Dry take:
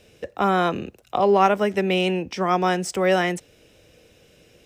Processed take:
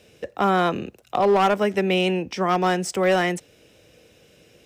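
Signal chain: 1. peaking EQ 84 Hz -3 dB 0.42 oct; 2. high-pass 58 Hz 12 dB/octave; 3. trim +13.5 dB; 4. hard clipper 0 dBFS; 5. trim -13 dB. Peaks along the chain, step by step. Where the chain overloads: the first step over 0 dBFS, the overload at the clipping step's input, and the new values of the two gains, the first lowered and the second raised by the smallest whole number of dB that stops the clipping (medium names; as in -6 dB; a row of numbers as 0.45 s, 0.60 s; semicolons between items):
-5.0 dBFS, -5.5 dBFS, +8.0 dBFS, 0.0 dBFS, -13.0 dBFS; step 3, 8.0 dB; step 3 +5.5 dB, step 5 -5 dB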